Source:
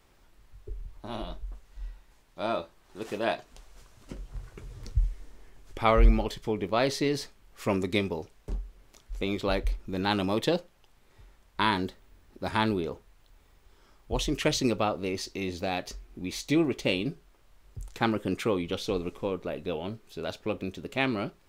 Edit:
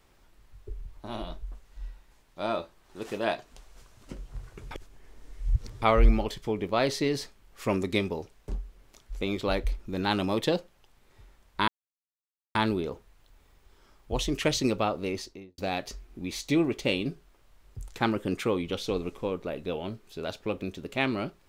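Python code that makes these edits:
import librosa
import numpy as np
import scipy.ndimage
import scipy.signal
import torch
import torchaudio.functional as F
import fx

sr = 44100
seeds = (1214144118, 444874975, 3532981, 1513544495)

y = fx.studio_fade_out(x, sr, start_s=15.1, length_s=0.48)
y = fx.edit(y, sr, fx.reverse_span(start_s=4.71, length_s=1.11),
    fx.silence(start_s=11.68, length_s=0.87), tone=tone)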